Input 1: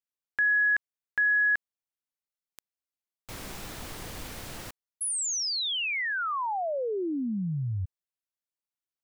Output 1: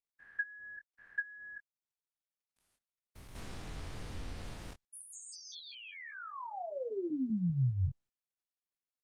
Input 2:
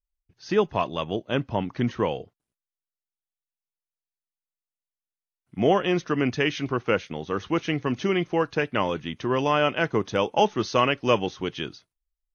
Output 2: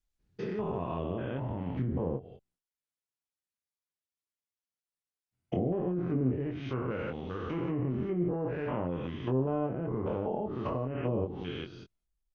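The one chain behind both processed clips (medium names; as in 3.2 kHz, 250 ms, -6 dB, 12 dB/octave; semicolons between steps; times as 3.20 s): spectrogram pixelated in time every 200 ms; bass shelf 140 Hz +9 dB; low-pass that closes with the level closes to 550 Hz, closed at -21.5 dBFS; doubling 23 ms -6 dB; trim -5.5 dB; Opus 32 kbps 48 kHz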